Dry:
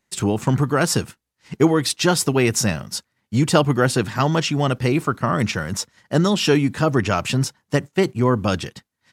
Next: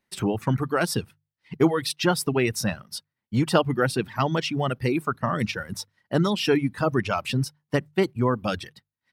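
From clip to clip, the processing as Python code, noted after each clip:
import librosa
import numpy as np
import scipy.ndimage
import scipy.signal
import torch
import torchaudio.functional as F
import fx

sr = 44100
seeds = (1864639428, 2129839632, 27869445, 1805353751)

y = fx.hum_notches(x, sr, base_hz=50, count=3)
y = fx.dereverb_blind(y, sr, rt60_s=1.4)
y = fx.peak_eq(y, sr, hz=7000.0, db=-12.0, octaves=0.43)
y = y * 10.0 ** (-3.5 / 20.0)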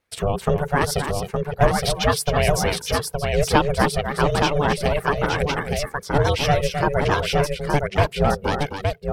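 y = fx.vibrato(x, sr, rate_hz=12.0, depth_cents=61.0)
y = y * np.sin(2.0 * np.pi * 290.0 * np.arange(len(y)) / sr)
y = fx.echo_multitap(y, sr, ms=(263, 867), db=(-7.5, -4.0))
y = y * 10.0 ** (5.5 / 20.0)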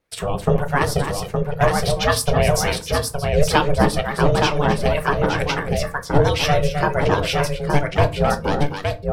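y = fx.harmonic_tremolo(x, sr, hz=2.1, depth_pct=50, crossover_hz=830.0)
y = fx.room_shoebox(y, sr, seeds[0], volume_m3=130.0, walls='furnished', distance_m=0.57)
y = y * 10.0 ** (3.0 / 20.0)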